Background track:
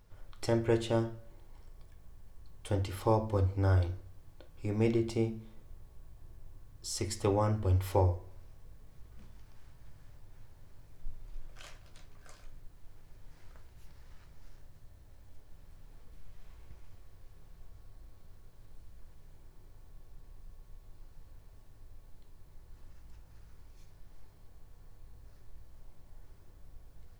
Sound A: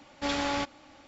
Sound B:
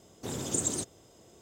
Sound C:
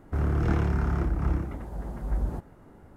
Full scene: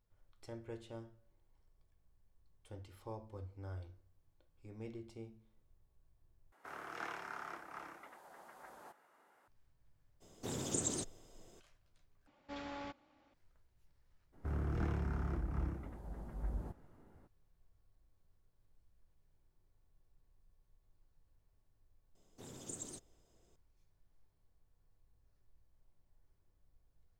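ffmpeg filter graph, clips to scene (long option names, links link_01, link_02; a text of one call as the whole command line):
ffmpeg -i bed.wav -i cue0.wav -i cue1.wav -i cue2.wav -filter_complex "[3:a]asplit=2[link_01][link_02];[2:a]asplit=2[link_03][link_04];[0:a]volume=-19dB[link_05];[link_01]highpass=950[link_06];[link_03]acrossover=split=8900[link_07][link_08];[link_08]acompressor=threshold=-50dB:ratio=4:attack=1:release=60[link_09];[link_07][link_09]amix=inputs=2:normalize=0[link_10];[1:a]aemphasis=mode=reproduction:type=75kf[link_11];[link_05]asplit=3[link_12][link_13][link_14];[link_12]atrim=end=6.524[link_15];[link_06]atrim=end=2.96,asetpts=PTS-STARTPTS,volume=-5.5dB[link_16];[link_13]atrim=start=9.476:end=12.274[link_17];[link_11]atrim=end=1.07,asetpts=PTS-STARTPTS,volume=-15dB[link_18];[link_14]atrim=start=13.336[link_19];[link_10]atrim=end=1.41,asetpts=PTS-STARTPTS,volume=-5dB,afade=type=in:duration=0.02,afade=type=out:start_time=1.39:duration=0.02,adelay=10200[link_20];[link_02]atrim=end=2.96,asetpts=PTS-STARTPTS,volume=-12dB,afade=type=in:duration=0.02,afade=type=out:start_time=2.94:duration=0.02,adelay=14320[link_21];[link_04]atrim=end=1.41,asetpts=PTS-STARTPTS,volume=-16.5dB,afade=type=in:duration=0.004:curve=hsin,afade=type=out:start_time=1.406:duration=0.004:curve=hsin,adelay=22150[link_22];[link_15][link_16]acrossfade=duration=0.004:curve1=hsin:curve2=hsin[link_23];[link_23][link_17]acrossfade=duration=0.004:curve1=hsin:curve2=hsin[link_24];[link_24][link_18]acrossfade=duration=0.004:curve1=hsin:curve2=hsin[link_25];[link_25][link_19]acrossfade=duration=0.004:curve1=hsin:curve2=hsin[link_26];[link_26][link_20][link_21][link_22]amix=inputs=4:normalize=0" out.wav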